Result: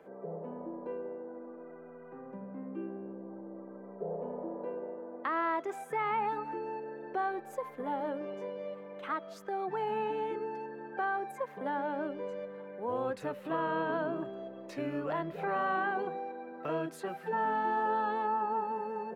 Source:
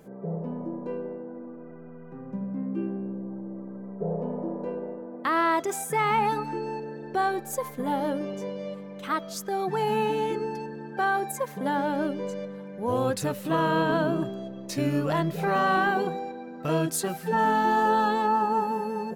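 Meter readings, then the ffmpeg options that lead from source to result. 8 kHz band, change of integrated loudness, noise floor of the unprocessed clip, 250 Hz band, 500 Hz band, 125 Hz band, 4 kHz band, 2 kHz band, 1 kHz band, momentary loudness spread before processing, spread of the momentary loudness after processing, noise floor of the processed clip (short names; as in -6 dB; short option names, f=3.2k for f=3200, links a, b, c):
under -20 dB, -8.0 dB, -42 dBFS, -11.0 dB, -7.0 dB, -15.5 dB, -14.5 dB, -8.0 dB, -7.0 dB, 14 LU, 13 LU, -50 dBFS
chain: -filter_complex "[0:a]acrossover=split=240[a][b];[b]acompressor=threshold=-42dB:ratio=1.5[c];[a][c]amix=inputs=2:normalize=0,acrossover=split=320 2800:gain=0.126 1 0.112[d][e][f];[d][e][f]amix=inputs=3:normalize=0"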